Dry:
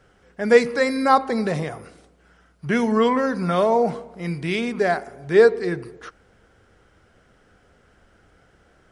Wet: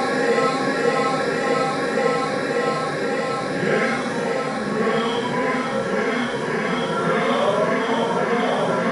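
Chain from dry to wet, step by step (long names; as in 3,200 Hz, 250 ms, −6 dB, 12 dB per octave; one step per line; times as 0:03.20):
harmonic and percussive parts rebalanced harmonic −10 dB
echo that builds up and dies away 135 ms, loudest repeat 5, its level −3.5 dB
extreme stretch with random phases 4.2×, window 0.10 s, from 0:01.83
level +1.5 dB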